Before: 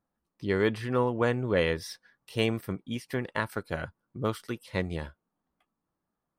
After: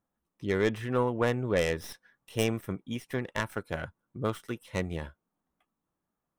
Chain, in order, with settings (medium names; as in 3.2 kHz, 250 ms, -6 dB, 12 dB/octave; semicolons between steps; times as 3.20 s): tracing distortion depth 0.16 ms; peaking EQ 4.6 kHz -13 dB 0.22 oct; trim -1 dB